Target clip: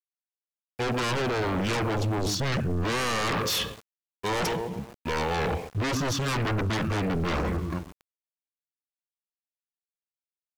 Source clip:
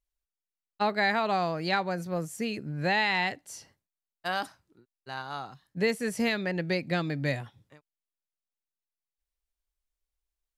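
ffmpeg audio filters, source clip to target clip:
ffmpeg -i in.wav -filter_complex "[0:a]equalizer=frequency=300:width_type=o:width=0.24:gain=8,asplit=2[link_01][link_02];[link_02]adelay=127,lowpass=frequency=1900:poles=1,volume=-16.5dB,asplit=2[link_03][link_04];[link_04]adelay=127,lowpass=frequency=1900:poles=1,volume=0.48,asplit=2[link_05][link_06];[link_06]adelay=127,lowpass=frequency=1900:poles=1,volume=0.48,asplit=2[link_07][link_08];[link_08]adelay=127,lowpass=frequency=1900:poles=1,volume=0.48[link_09];[link_03][link_05][link_07][link_09]amix=inputs=4:normalize=0[link_10];[link_01][link_10]amix=inputs=2:normalize=0,aeval=exprs='0.237*(cos(1*acos(clip(val(0)/0.237,-1,1)))-cos(1*PI/2))+0.0944*(cos(5*acos(clip(val(0)/0.237,-1,1)))-cos(5*PI/2))':channel_layout=same,bandreject=frequency=365.7:width_type=h:width=4,bandreject=frequency=731.4:width_type=h:width=4,bandreject=frequency=1097.1:width_type=h:width=4,bandreject=frequency=1462.8:width_type=h:width=4,bandreject=frequency=1828.5:width_type=h:width=4,bandreject=frequency=2194.2:width_type=h:width=4,bandreject=frequency=2559.9:width_type=h:width=4,bandreject=frequency=2925.6:width_type=h:width=4,bandreject=frequency=3291.3:width_type=h:width=4,bandreject=frequency=3657:width_type=h:width=4,bandreject=frequency=4022.7:width_type=h:width=4,bandreject=frequency=4388.4:width_type=h:width=4,bandreject=frequency=4754.1:width_type=h:width=4,bandreject=frequency=5119.8:width_type=h:width=4,bandreject=frequency=5485.5:width_type=h:width=4,bandreject=frequency=5851.2:width_type=h:width=4,bandreject=frequency=6216.9:width_type=h:width=4,bandreject=frequency=6582.6:width_type=h:width=4,bandreject=frequency=6948.3:width_type=h:width=4,bandreject=frequency=7314:width_type=h:width=4,bandreject=frequency=7679.7:width_type=h:width=4,areverse,acompressor=threshold=-30dB:ratio=20,areverse,asetrate=26222,aresample=44100,atempo=1.68179,aeval=exprs='val(0)*gte(abs(val(0)),0.00168)':channel_layout=same,acontrast=75,aeval=exprs='0.141*sin(PI/2*3.16*val(0)/0.141)':channel_layout=same,volume=-6.5dB" out.wav

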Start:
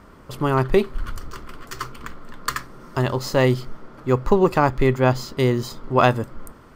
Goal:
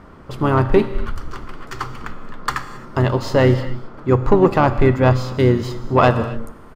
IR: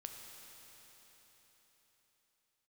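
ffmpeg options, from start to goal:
-filter_complex "[0:a]lowpass=frequency=2800:poles=1,acontrast=47,asplit=2[link_01][link_02];[link_02]asetrate=33038,aresample=44100,atempo=1.33484,volume=-10dB[link_03];[link_01][link_03]amix=inputs=2:normalize=0,asplit=2[link_04][link_05];[1:a]atrim=start_sample=2205,afade=type=out:start_time=0.33:duration=0.01,atrim=end_sample=14994[link_06];[link_05][link_06]afir=irnorm=-1:irlink=0,volume=4.5dB[link_07];[link_04][link_07]amix=inputs=2:normalize=0,volume=-7dB"

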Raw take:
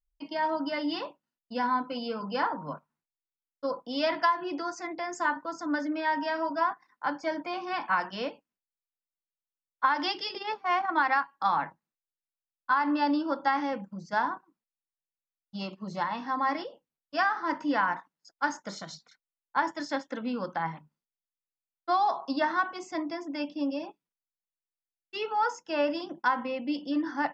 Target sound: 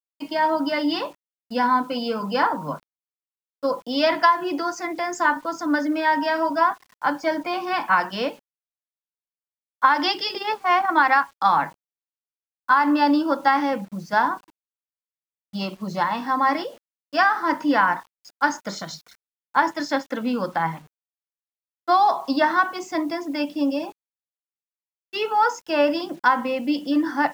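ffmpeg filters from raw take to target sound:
ffmpeg -i in.wav -af "acrusher=bits=9:mix=0:aa=0.000001,volume=8dB" out.wav

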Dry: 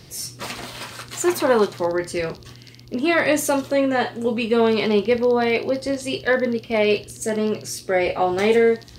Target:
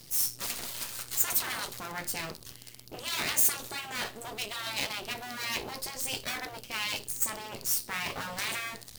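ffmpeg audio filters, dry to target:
ffmpeg -i in.wav -af "aeval=exprs='max(val(0),0)':channel_layout=same,afftfilt=real='re*lt(hypot(re,im),0.2)':imag='im*lt(hypot(re,im),0.2)':win_size=1024:overlap=0.75,aemphasis=mode=production:type=75fm,volume=-6dB" out.wav

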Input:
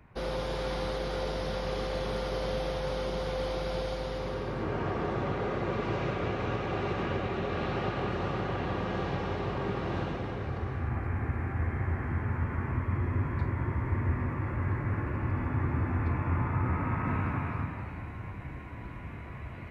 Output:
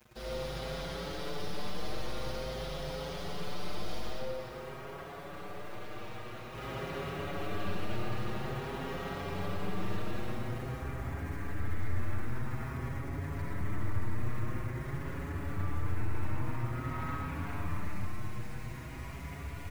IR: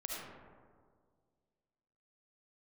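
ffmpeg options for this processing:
-filter_complex "[0:a]highpass=frequency=75:poles=1,highshelf=frequency=2400:gain=10.5,alimiter=level_in=2dB:limit=-24dB:level=0:latency=1:release=20,volume=-2dB,lowshelf=frequency=110:gain=10,acrusher=bits=7:mix=0:aa=0.000001,aeval=exprs='(tanh(35.5*val(0)+0.2)-tanh(0.2))/35.5':channel_layout=same,asettb=1/sr,asplit=3[link_01][link_02][link_03];[link_01]atrim=end=4.114[link_04];[link_02]atrim=start=4.11:end=6.54,asetpts=PTS-STARTPTS,afade=type=in:duration=0.004:curve=qsin,afade=type=out:start_time=2.426:duration=0.004:curve=qsin,acrossover=split=110|460[link_05][link_06][link_07];[link_05]acompressor=threshold=-54dB:ratio=4[link_08];[link_06]acompressor=threshold=-51dB:ratio=4[link_09];[link_07]acompressor=threshold=-42dB:ratio=4[link_10];[link_08][link_09][link_10]amix=inputs=3:normalize=0[link_11];[link_03]atrim=start=6.536[link_12];[link_04][link_11]acrossfade=duration=0.004:curve1=hsin:curve2=qsin[link_13];[link_13][link_12]acrossfade=duration=0.004:curve1=qsin:curve2=hsin[link_14];[1:a]atrim=start_sample=2205[link_15];[link_14][link_15]afir=irnorm=-1:irlink=0,asplit=2[link_16][link_17];[link_17]adelay=6.1,afreqshift=0.49[link_18];[link_16][link_18]amix=inputs=2:normalize=1"

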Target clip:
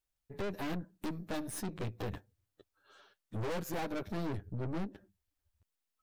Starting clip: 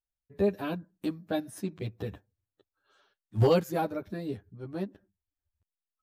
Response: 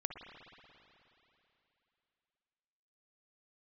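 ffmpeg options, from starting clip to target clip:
-filter_complex "[0:a]asettb=1/sr,asplit=3[link_01][link_02][link_03];[link_01]atrim=end=4.174[link_04];[link_02]atrim=start=4.17:end=4.85,asetpts=PTS-STARTPTS,afade=type=in:duration=0.004:curve=qsin,afade=type=out:start_time=0.676:duration=0.004:curve=qsin,lowshelf=frequency=240:gain=7.5[link_05];[link_03]atrim=start=4.846[link_06];[link_04][link_05]acrossfade=duration=0.004:curve1=hsin:curve2=qsin[link_07];[link_07][link_06]acrossfade=duration=0.004:curve1=qsin:curve2=hsin,acompressor=threshold=-32dB:ratio=3,aeval=exprs='(tanh(158*val(0)+0.7)-tanh(0.7))/158':channel_layout=same,volume=9dB"

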